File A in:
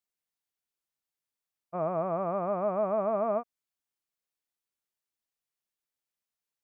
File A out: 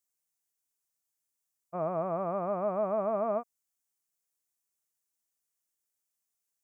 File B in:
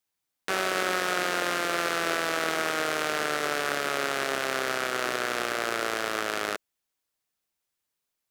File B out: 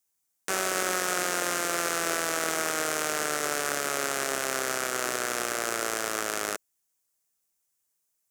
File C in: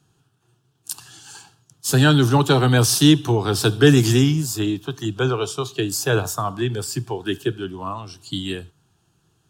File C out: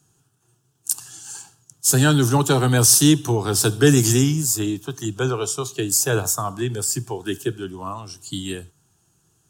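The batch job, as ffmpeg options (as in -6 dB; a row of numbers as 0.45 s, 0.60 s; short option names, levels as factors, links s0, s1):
-af "highshelf=f=5200:t=q:w=1.5:g=8,volume=0.841"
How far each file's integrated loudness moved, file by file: -1.5 LU, -0.5 LU, +0.5 LU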